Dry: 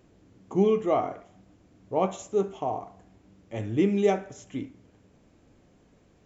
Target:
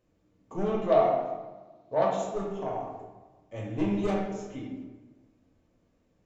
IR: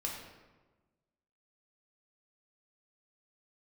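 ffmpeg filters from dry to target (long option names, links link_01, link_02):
-filter_complex "[0:a]aeval=exprs='0.299*(cos(1*acos(clip(val(0)/0.299,-1,1)))-cos(1*PI/2))+0.0531*(cos(4*acos(clip(val(0)/0.299,-1,1)))-cos(4*PI/2))+0.0422*(cos(5*acos(clip(val(0)/0.299,-1,1)))-cos(5*PI/2))+0.0168*(cos(6*acos(clip(val(0)/0.299,-1,1)))-cos(6*PI/2))':channel_layout=same,agate=range=-8dB:threshold=-48dB:ratio=16:detection=peak,asettb=1/sr,asplit=3[link_01][link_02][link_03];[link_01]atrim=end=0.744[link_04];[link_02]atrim=start=0.74:end=2.17,asetpts=PTS-STARTPTS,afade=type=in:duration=0.004:curve=qsin,afade=type=out:start_time=1.426:duration=0.004:curve=qsin,highpass=130,equalizer=frequency=140:width_type=q:width=4:gain=5,equalizer=frequency=670:width_type=q:width=4:gain=9,equalizer=frequency=960:width_type=q:width=4:gain=6,equalizer=frequency=4000:width_type=q:width=4:gain=9,lowpass=frequency=6700:width=0.5412,lowpass=frequency=6700:width=1.3066[link_05];[link_03]atrim=start=2.166[link_06];[link_04][link_05]acrossfade=duration=0.004:curve1=hsin:curve2=qsin[link_07];[link_07][link_06]acrossfade=duration=0.004:curve1=qsin:curve2=hsin[link_08];[1:a]atrim=start_sample=2205[link_09];[link_08][link_09]afir=irnorm=-1:irlink=0,volume=-8.5dB"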